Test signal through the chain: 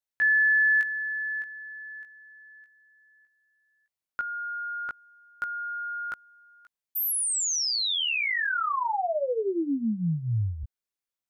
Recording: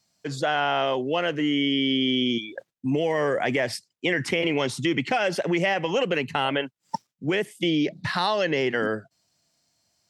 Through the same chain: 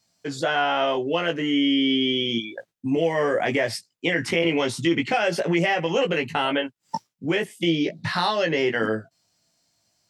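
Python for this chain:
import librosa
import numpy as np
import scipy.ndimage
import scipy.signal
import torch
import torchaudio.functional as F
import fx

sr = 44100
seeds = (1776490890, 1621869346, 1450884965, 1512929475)

y = fx.doubler(x, sr, ms=18.0, db=-4.0)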